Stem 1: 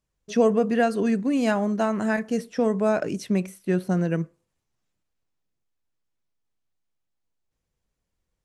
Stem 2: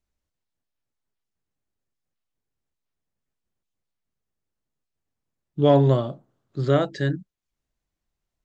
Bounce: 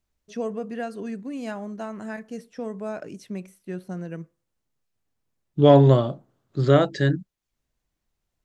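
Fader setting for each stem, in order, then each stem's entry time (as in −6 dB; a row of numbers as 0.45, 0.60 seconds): −10.0, +3.0 decibels; 0.00, 0.00 seconds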